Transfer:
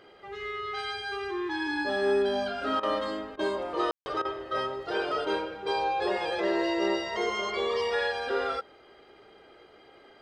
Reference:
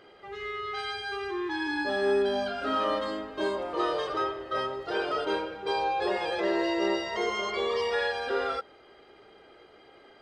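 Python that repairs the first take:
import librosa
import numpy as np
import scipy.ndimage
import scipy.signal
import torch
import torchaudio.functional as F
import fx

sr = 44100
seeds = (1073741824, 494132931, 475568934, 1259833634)

y = fx.fix_ambience(x, sr, seeds[0], print_start_s=9.66, print_end_s=10.16, start_s=3.91, end_s=4.06)
y = fx.fix_interpolate(y, sr, at_s=(2.8, 3.36, 4.22), length_ms=29.0)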